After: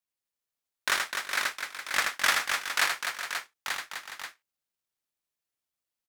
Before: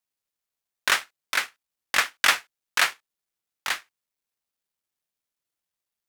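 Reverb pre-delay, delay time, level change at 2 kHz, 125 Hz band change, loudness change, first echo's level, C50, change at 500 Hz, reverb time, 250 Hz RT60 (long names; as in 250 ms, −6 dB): no reverb audible, 80 ms, −3.0 dB, can't be measured, −4.5 dB, −4.5 dB, no reverb audible, −2.0 dB, no reverb audible, no reverb audible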